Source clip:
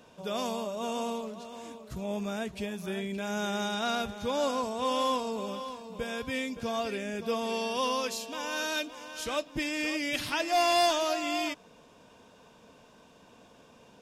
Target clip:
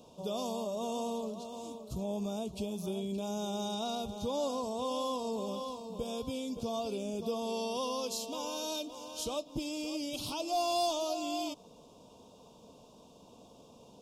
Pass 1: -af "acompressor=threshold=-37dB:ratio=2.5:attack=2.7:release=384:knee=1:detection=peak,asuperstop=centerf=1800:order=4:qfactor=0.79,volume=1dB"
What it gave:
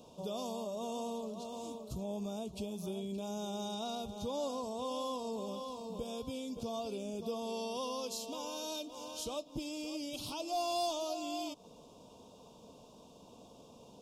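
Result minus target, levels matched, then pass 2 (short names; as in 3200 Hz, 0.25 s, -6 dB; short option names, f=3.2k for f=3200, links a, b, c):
compressor: peak gain reduction +3.5 dB
-af "acompressor=threshold=-31dB:ratio=2.5:attack=2.7:release=384:knee=1:detection=peak,asuperstop=centerf=1800:order=4:qfactor=0.79,volume=1dB"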